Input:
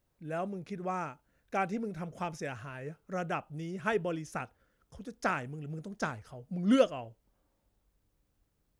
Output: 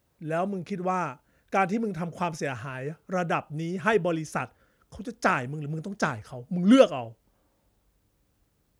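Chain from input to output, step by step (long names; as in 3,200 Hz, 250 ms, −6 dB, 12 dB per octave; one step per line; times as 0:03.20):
high-pass filter 49 Hz
level +7.5 dB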